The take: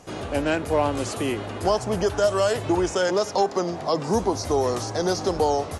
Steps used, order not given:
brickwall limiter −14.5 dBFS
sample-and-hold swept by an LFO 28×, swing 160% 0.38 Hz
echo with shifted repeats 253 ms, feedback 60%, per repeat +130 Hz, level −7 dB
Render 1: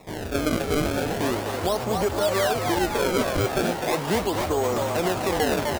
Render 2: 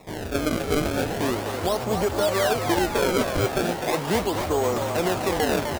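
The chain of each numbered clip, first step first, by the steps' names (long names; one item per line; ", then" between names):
sample-and-hold swept by an LFO, then echo with shifted repeats, then brickwall limiter
brickwall limiter, then sample-and-hold swept by an LFO, then echo with shifted repeats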